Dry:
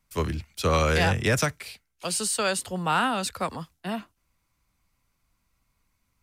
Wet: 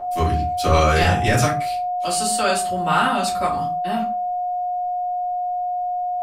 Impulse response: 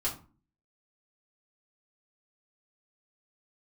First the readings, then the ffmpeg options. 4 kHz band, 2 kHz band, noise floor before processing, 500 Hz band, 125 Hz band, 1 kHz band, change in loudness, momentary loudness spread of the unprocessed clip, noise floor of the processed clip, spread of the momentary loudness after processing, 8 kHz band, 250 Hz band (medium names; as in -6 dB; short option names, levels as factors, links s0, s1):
+4.5 dB, +4.0 dB, -75 dBFS, +7.0 dB, +6.0 dB, +12.0 dB, +5.0 dB, 14 LU, -24 dBFS, 7 LU, +3.5 dB, +5.0 dB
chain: -filter_complex "[0:a]bandreject=f=205:t=h:w=4,bandreject=f=410:t=h:w=4,bandreject=f=615:t=h:w=4,bandreject=f=820:t=h:w=4,bandreject=f=1025:t=h:w=4,bandreject=f=1230:t=h:w=4,bandreject=f=1435:t=h:w=4,bandreject=f=1640:t=h:w=4,bandreject=f=1845:t=h:w=4,bandreject=f=2050:t=h:w=4,bandreject=f=2255:t=h:w=4,bandreject=f=2460:t=h:w=4,aeval=exprs='val(0)+0.0355*sin(2*PI*720*n/s)':c=same[s0];[1:a]atrim=start_sample=2205,afade=t=out:st=0.22:d=0.01,atrim=end_sample=10143[s1];[s0][s1]afir=irnorm=-1:irlink=0"